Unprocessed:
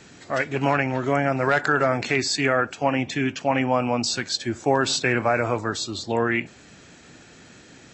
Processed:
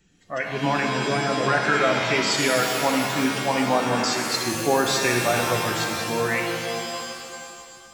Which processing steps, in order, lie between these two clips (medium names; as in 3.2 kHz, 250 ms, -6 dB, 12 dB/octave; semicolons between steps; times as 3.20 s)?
expander on every frequency bin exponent 1.5; pitch-shifted reverb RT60 2.3 s, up +7 st, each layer -2 dB, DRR 2.5 dB